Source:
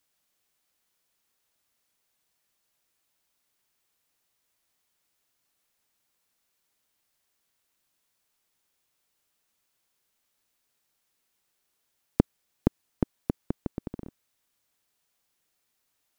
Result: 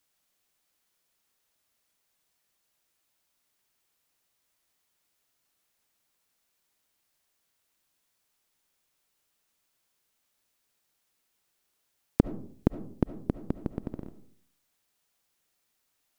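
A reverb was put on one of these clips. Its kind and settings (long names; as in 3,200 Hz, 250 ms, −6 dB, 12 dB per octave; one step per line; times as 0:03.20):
comb and all-pass reverb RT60 0.56 s, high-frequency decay 0.35×, pre-delay 30 ms, DRR 12 dB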